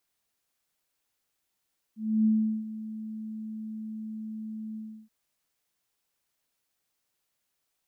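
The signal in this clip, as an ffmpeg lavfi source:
-f lavfi -i "aevalsrc='0.112*sin(2*PI*218*t)':d=3.127:s=44100,afade=t=in:d=0.293,afade=t=out:st=0.293:d=0.386:silence=0.168,afade=t=out:st=2.8:d=0.327"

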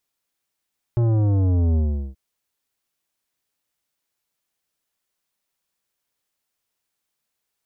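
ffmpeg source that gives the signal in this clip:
-f lavfi -i "aevalsrc='0.141*clip((1.18-t)/0.39,0,1)*tanh(3.98*sin(2*PI*120*1.18/log(65/120)*(exp(log(65/120)*t/1.18)-1)))/tanh(3.98)':d=1.18:s=44100"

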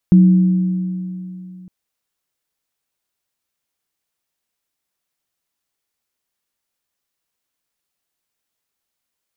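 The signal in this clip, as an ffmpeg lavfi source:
-f lavfi -i "aevalsrc='0.596*pow(10,-3*t/2.97)*sin(2*PI*183*t)+0.1*pow(10,-3*t/2.46)*sin(2*PI*321*t)':d=1.56:s=44100"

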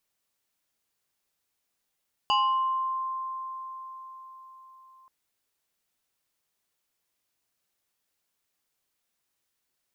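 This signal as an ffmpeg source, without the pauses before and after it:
-f lavfi -i "aevalsrc='0.106*pow(10,-3*t/4.92)*sin(2*PI*1050*t+1.3*pow(10,-3*t/0.87)*sin(2*PI*1.79*1050*t))':d=2.78:s=44100"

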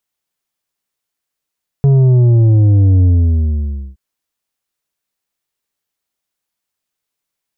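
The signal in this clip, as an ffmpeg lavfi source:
-f lavfi -i "aevalsrc='0.447*clip((2.12-t)/0.92,0,1)*tanh(2.24*sin(2*PI*140*2.12/log(65/140)*(exp(log(65/140)*t/2.12)-1)))/tanh(2.24)':d=2.12:s=44100"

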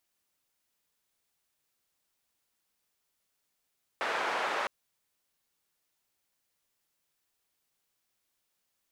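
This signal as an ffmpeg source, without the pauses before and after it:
-f lavfi -i "anoisesrc=c=white:d=0.66:r=44100:seed=1,highpass=f=570,lowpass=f=1400,volume=-13.5dB"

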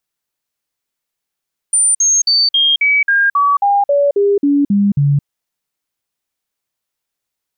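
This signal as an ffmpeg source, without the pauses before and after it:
-f lavfi -i "aevalsrc='0.355*clip(min(mod(t,0.27),0.22-mod(t,0.27))/0.005,0,1)*sin(2*PI*9120*pow(2,-floor(t/0.27)/2)*mod(t,0.27))':d=3.51:s=44100"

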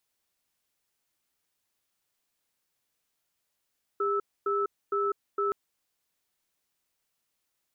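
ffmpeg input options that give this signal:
-f lavfi -i "aevalsrc='0.0422*(sin(2*PI*403*t)+sin(2*PI*1310*t))*clip(min(mod(t,0.46),0.2-mod(t,0.46))/0.005,0,1)':d=1.52:s=44100"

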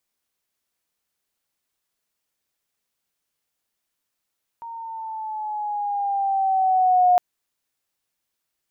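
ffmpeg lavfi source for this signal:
-f lavfi -i "aevalsrc='pow(10,(-12+20.5*(t/2.56-1))/20)*sin(2*PI*929*2.56/(-4.5*log(2)/12)*(exp(-4.5*log(2)/12*t/2.56)-1))':d=2.56:s=44100"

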